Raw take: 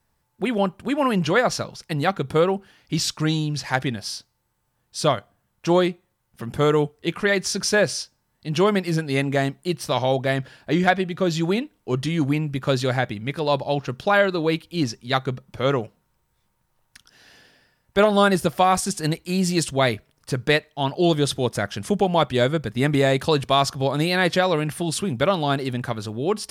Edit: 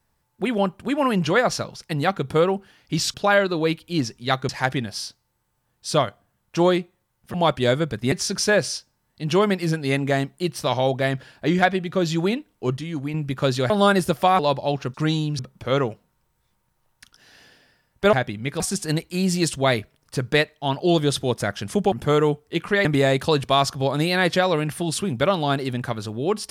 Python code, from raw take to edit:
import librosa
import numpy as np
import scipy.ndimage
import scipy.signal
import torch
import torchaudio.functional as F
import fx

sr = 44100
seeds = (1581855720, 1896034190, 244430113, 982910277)

y = fx.edit(x, sr, fx.swap(start_s=3.14, length_s=0.45, other_s=13.97, other_length_s=1.35),
    fx.swap(start_s=6.44, length_s=0.93, other_s=22.07, other_length_s=0.78),
    fx.clip_gain(start_s=12.02, length_s=0.37, db=-7.0),
    fx.swap(start_s=12.95, length_s=0.47, other_s=18.06, other_length_s=0.69), tone=tone)